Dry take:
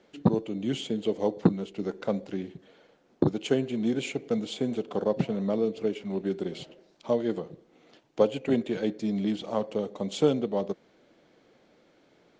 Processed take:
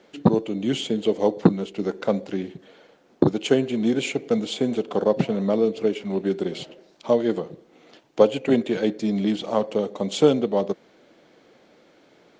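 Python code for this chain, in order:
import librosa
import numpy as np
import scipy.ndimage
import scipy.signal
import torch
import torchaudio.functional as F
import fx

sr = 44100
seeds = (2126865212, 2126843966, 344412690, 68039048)

y = fx.low_shelf(x, sr, hz=120.0, db=-8.0)
y = F.gain(torch.from_numpy(y), 7.0).numpy()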